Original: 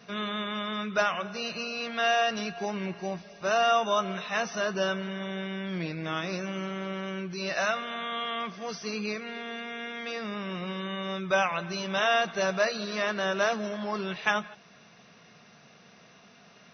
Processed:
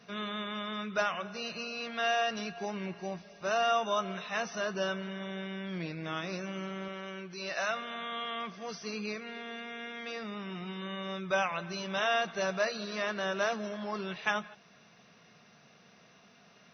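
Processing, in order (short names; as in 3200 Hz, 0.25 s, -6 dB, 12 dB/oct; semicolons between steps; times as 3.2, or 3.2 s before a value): 6.88–7.71 low shelf 210 Hz -10 dB; 10.23–10.82 notch comb 550 Hz; gain -4.5 dB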